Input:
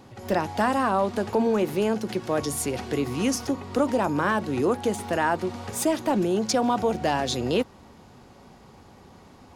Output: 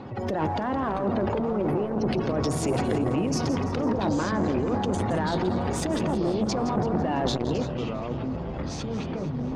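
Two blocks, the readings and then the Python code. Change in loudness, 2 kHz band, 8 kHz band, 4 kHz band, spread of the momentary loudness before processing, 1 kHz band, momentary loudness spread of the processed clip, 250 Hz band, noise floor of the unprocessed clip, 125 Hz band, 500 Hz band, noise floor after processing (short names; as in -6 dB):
-1.5 dB, -5.5 dB, -5.5 dB, -2.5 dB, 5 LU, -3.0 dB, 6 LU, +1.0 dB, -51 dBFS, +6.0 dB, -2.0 dB, -32 dBFS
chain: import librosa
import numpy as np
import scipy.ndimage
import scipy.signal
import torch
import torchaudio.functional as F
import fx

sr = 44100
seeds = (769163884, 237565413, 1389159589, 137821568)

y = fx.over_compress(x, sr, threshold_db=-29.0, ratio=-1.0)
y = fx.highpass(y, sr, hz=73.0, slope=6)
y = fx.spec_gate(y, sr, threshold_db=-25, keep='strong')
y = fx.leveller(y, sr, passes=2)
y = scipy.signal.sosfilt(scipy.signal.butter(2, 6200.0, 'lowpass', fs=sr, output='sos'), y)
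y = fx.tilt_shelf(y, sr, db=3.0, hz=1100.0)
y = fx.echo_split(y, sr, split_hz=360.0, low_ms=327, high_ms=167, feedback_pct=52, wet_db=-12)
y = fx.echo_pitch(y, sr, ms=562, semitones=-6, count=3, db_per_echo=-6.0)
y = fx.transformer_sat(y, sr, knee_hz=480.0)
y = y * librosa.db_to_amplitude(-3.0)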